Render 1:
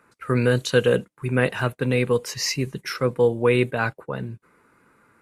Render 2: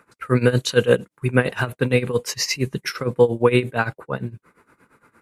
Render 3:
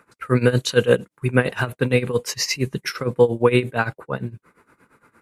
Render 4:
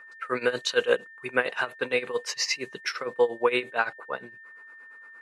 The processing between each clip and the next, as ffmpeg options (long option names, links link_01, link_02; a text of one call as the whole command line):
ffmpeg -i in.wav -af "tremolo=f=8.7:d=0.86,volume=6dB" out.wav
ffmpeg -i in.wav -af anull out.wav
ffmpeg -i in.wav -af "highpass=550,lowpass=6300,aeval=exprs='val(0)+0.00708*sin(2*PI*1800*n/s)':channel_layout=same,volume=-2.5dB" out.wav